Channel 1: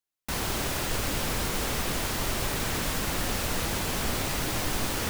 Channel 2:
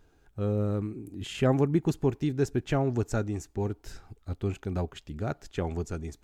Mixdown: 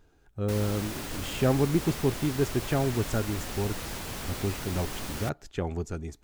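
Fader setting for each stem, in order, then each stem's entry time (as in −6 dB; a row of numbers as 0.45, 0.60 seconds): −7.5, 0.0 decibels; 0.20, 0.00 seconds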